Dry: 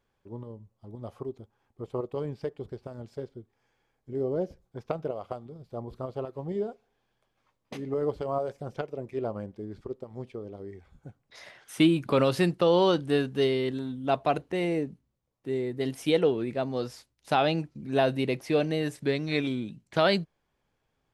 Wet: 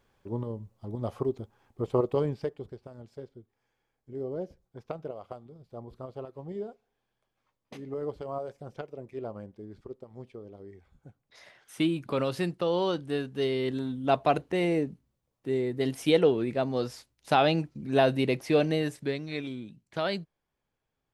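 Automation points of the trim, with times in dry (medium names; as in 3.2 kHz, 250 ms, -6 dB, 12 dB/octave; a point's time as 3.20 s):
2.13 s +7 dB
2.81 s -5.5 dB
13.31 s -5.5 dB
13.81 s +1.5 dB
18.74 s +1.5 dB
19.32 s -7 dB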